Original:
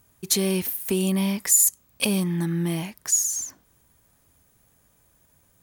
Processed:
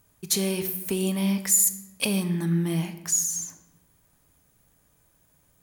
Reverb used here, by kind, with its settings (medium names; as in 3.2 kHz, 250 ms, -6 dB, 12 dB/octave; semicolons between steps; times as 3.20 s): simulated room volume 460 m³, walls mixed, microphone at 0.47 m; trim -2.5 dB